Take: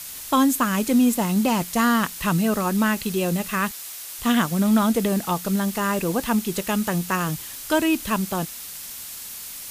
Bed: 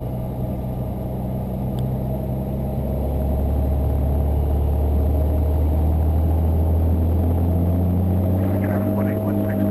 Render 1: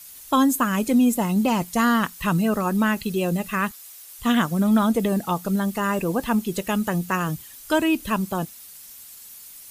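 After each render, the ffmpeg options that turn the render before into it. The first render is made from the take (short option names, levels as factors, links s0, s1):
-af "afftdn=nr=11:nf=-36"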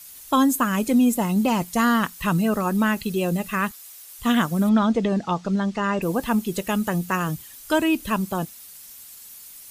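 -filter_complex "[0:a]asettb=1/sr,asplit=3[s0][s1][s2];[s0]atrim=end=4.694[s3];[s1]atrim=start=4.69:end=6.02,asetpts=PTS-STARTPTS,afade=t=in:d=0.004:c=qsin,afade=t=out:st=1.326:d=0.004:c=qsin,lowpass=f=6100:w=0.5412,lowpass=f=6100:w=1.3066[s4];[s2]atrim=start=6.016[s5];[s3][s4]acrossfade=d=0.004:c1=hsin:c2=qsin[s6];[s6][s5]acrossfade=d=0.004:c1=qsin:c2=hsin"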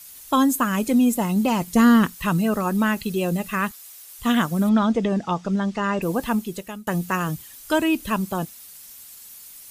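-filter_complex "[0:a]asettb=1/sr,asplit=3[s0][s1][s2];[s0]atrim=end=1.674[s3];[s1]atrim=start=1.67:end=2.15,asetpts=PTS-STARTPTS,afade=t=in:d=0.004:c=qsin,afade=t=out:st=0.476:d=0.004:c=qsin,lowshelf=f=510:t=q:w=1.5:g=6[s4];[s2]atrim=start=2.146[s5];[s3][s4]acrossfade=d=0.004:c1=hsin:c2=qsin[s6];[s6][s5]acrossfade=d=0.004:c1=qsin:c2=hsin,asettb=1/sr,asplit=3[s7][s8][s9];[s7]atrim=end=4.924[s10];[s8]atrim=start=4.92:end=5.63,asetpts=PTS-STARTPTS,afade=t=in:d=0.004:c=qsin,afade=t=out:st=0.706:d=0.004:c=qsin,bandreject=f=4200:w=9.8[s11];[s9]atrim=start=5.626[s12];[s10][s11]acrossfade=d=0.004:c1=hsin:c2=qsin[s13];[s13][s12]acrossfade=d=0.004:c1=qsin:c2=hsin,asplit=2[s14][s15];[s14]atrim=end=6.87,asetpts=PTS-STARTPTS,afade=t=out:st=6.27:d=0.6:silence=0.0668344[s16];[s15]atrim=start=6.87,asetpts=PTS-STARTPTS,afade=t=in:d=0.004:c=hsin:silence=0.0668344[s17];[s16][s17]concat=n=2:v=0:a=1"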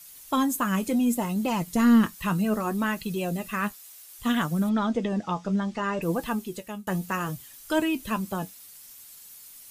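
-af "asoftclip=type=tanh:threshold=0.422,flanger=delay=5.7:depth=5.1:regen=56:speed=0.65:shape=triangular"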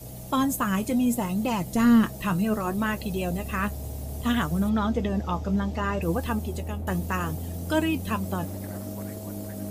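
-filter_complex "[1:a]volume=0.178[s0];[0:a][s0]amix=inputs=2:normalize=0"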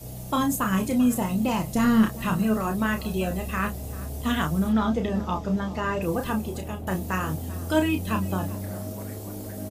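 -filter_complex "[0:a]asplit=2[s0][s1];[s1]adelay=32,volume=0.501[s2];[s0][s2]amix=inputs=2:normalize=0,asplit=2[s3][s4];[s4]adelay=390.7,volume=0.126,highshelf=f=4000:g=-8.79[s5];[s3][s5]amix=inputs=2:normalize=0"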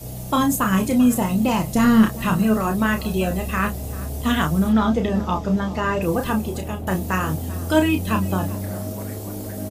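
-af "volume=1.78"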